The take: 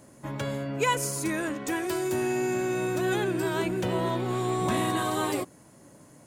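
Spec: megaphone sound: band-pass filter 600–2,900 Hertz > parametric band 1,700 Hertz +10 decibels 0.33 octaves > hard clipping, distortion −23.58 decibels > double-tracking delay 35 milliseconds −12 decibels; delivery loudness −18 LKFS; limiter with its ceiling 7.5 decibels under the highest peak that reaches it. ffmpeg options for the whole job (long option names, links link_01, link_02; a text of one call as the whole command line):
ffmpeg -i in.wav -filter_complex "[0:a]alimiter=limit=-21dB:level=0:latency=1,highpass=600,lowpass=2900,equalizer=frequency=1700:width_type=o:width=0.33:gain=10,asoftclip=type=hard:threshold=-24.5dB,asplit=2[link_01][link_02];[link_02]adelay=35,volume=-12dB[link_03];[link_01][link_03]amix=inputs=2:normalize=0,volume=15dB" out.wav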